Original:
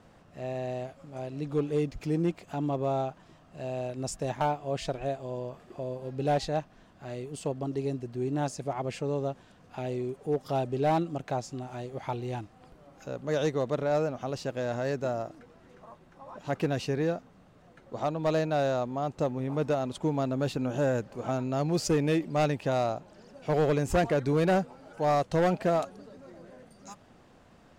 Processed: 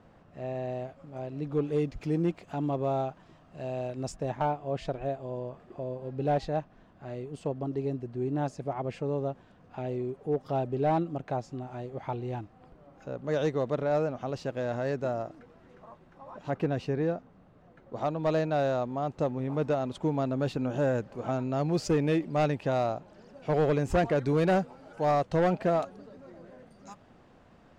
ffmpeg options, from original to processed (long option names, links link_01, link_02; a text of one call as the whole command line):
ffmpeg -i in.wav -af "asetnsamples=nb_out_samples=441:pad=0,asendcmd='1.64 lowpass f 3900;4.12 lowpass f 1700;13.24 lowpass f 3100;16.5 lowpass f 1500;17.96 lowpass f 3500;24.16 lowpass f 5800;25.11 lowpass f 3200',lowpass=frequency=2100:poles=1" out.wav